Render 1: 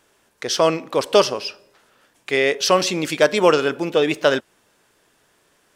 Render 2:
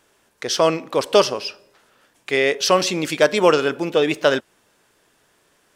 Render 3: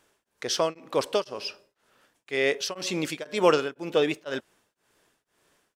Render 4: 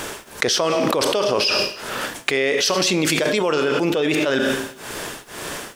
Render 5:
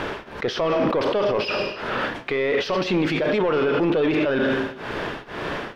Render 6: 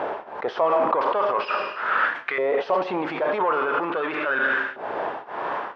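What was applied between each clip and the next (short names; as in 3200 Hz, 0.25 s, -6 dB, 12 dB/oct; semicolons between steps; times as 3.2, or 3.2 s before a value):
nothing audible
beating tremolo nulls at 2 Hz; gain -5 dB
Schroeder reverb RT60 0.55 s, combs from 26 ms, DRR 14 dB; fast leveller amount 100%; gain -3.5 dB
limiter -13 dBFS, peak gain reduction 11.5 dB; soft clip -19.5 dBFS, distortion -14 dB; air absorption 330 m; gain +5.5 dB
LFO band-pass saw up 0.42 Hz 700–1600 Hz; gain +8 dB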